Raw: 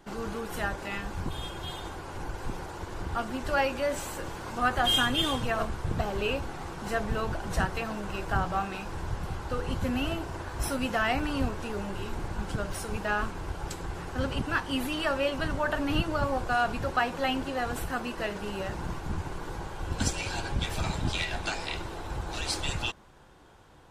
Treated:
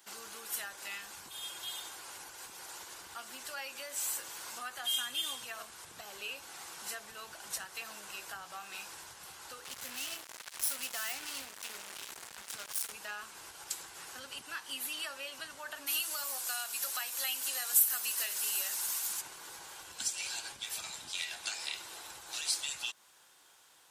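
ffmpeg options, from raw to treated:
ffmpeg -i in.wav -filter_complex "[0:a]asettb=1/sr,asplit=3[link_01][link_02][link_03];[link_01]atrim=end=9.644[link_04];[link_02]atrim=start=9.64:end=12.92,asetpts=PTS-STARTPTS,afade=type=in:duration=0.004:curve=qsin,afade=type=out:start_time=3.276:duration=0.004:curve=qsin,acrusher=bits=4:mix=0:aa=0.5[link_05];[link_03]atrim=start=12.916[link_06];[link_04][link_05]acrossfade=duration=0.004:curve1=hsin:curve2=qsin[link_07];[link_07][link_06]acrossfade=duration=0.004:curve1=qsin:curve2=hsin,asplit=3[link_08][link_09][link_10];[link_08]afade=type=out:start_time=15.86:duration=0.02[link_11];[link_09]aemphasis=mode=production:type=riaa,afade=type=in:start_time=15.86:duration=0.02,afade=type=out:start_time=19.2:duration=0.02[link_12];[link_10]afade=type=in:start_time=19.2:duration=0.02[link_13];[link_11][link_12][link_13]amix=inputs=3:normalize=0,acompressor=threshold=-34dB:ratio=3,aderivative,volume=8dB" out.wav

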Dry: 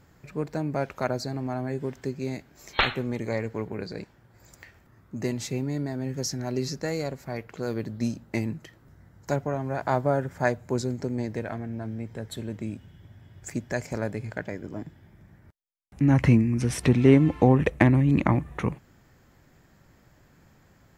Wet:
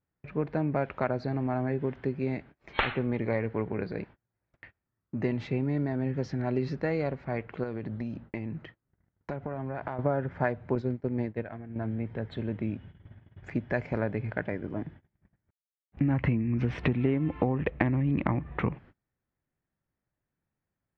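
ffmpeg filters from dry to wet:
ffmpeg -i in.wav -filter_complex "[0:a]asettb=1/sr,asplit=3[link_01][link_02][link_03];[link_01]atrim=end=7.634[link_04];[link_02]atrim=start=7.63:end=9.99,asetpts=PTS-STARTPTS,afade=type=in:duration=0.004:curve=qsin,afade=type=out:start_time=2.356:duration=0.004:curve=qsin,acompressor=threshold=-31dB:ratio=12:attack=3.2:release=140:knee=1:detection=peak[link_05];[link_03]atrim=start=9.986[link_06];[link_04][link_05]acrossfade=duration=0.004:curve1=hsin:curve2=qsin[link_07];[link_07][link_06]acrossfade=duration=0.004:curve1=qsin:curve2=hsin,asettb=1/sr,asplit=3[link_08][link_09][link_10];[link_08]atrim=end=10.754[link_11];[link_09]atrim=start=10.75:end=11.76,asetpts=PTS-STARTPTS,afade=type=in:duration=0.004:curve=qsin,afade=type=out:start_time=1.006:duration=0.004:curve=qsin,agate=range=-33dB:threshold=-27dB:ratio=3:release=100:detection=peak[link_12];[link_10]atrim=start=11.756[link_13];[link_11][link_12]acrossfade=duration=0.004:curve1=hsin:curve2=qsin[link_14];[link_14][link_13]acrossfade=duration=0.004:curve1=qsin:curve2=hsin,agate=range=-30dB:threshold=-48dB:ratio=16:detection=peak,lowpass=frequency=3000:width=0.5412,lowpass=frequency=3000:width=1.3066,acompressor=threshold=-24dB:ratio=10,volume=1.5dB" out.wav

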